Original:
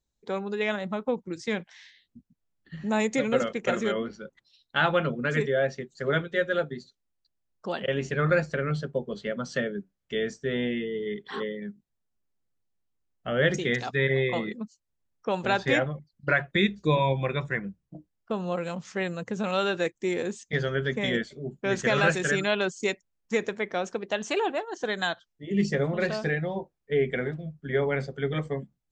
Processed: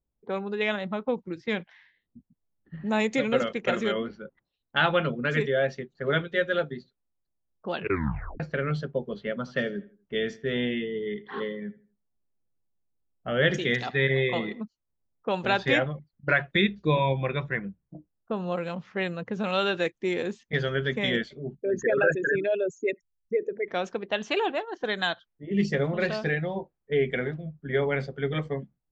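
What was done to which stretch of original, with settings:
7.74 s: tape stop 0.66 s
9.34–14.61 s: feedback delay 81 ms, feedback 36%, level -18 dB
16.61–18.37 s: distance through air 130 m
21.55–23.68 s: resonances exaggerated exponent 3
whole clip: level-controlled noise filter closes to 900 Hz, open at -23.5 dBFS; low-pass 5.3 kHz 12 dB/octave; dynamic bell 3.1 kHz, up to +4 dB, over -42 dBFS, Q 1.4

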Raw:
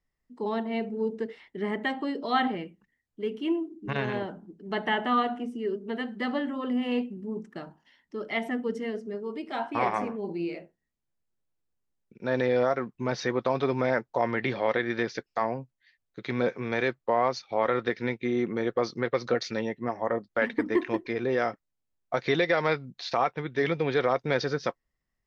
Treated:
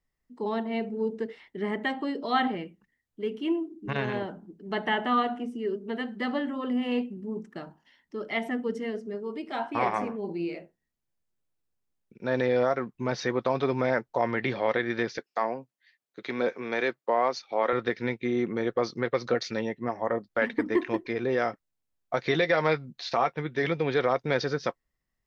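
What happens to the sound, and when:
15.18–17.73 s: high-pass 250 Hz
22.30–23.67 s: doubling 13 ms -11 dB

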